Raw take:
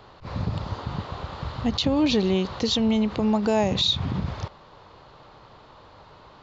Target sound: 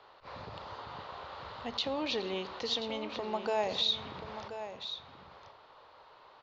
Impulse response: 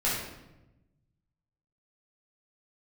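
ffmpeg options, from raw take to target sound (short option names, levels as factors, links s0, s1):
-filter_complex "[0:a]acrossover=split=410 5700:gain=0.126 1 0.126[s0][s1][s2];[s0][s1][s2]amix=inputs=3:normalize=0,aecho=1:1:1032:0.299,asplit=2[s3][s4];[1:a]atrim=start_sample=2205[s5];[s4][s5]afir=irnorm=-1:irlink=0,volume=0.075[s6];[s3][s6]amix=inputs=2:normalize=0,volume=0.447"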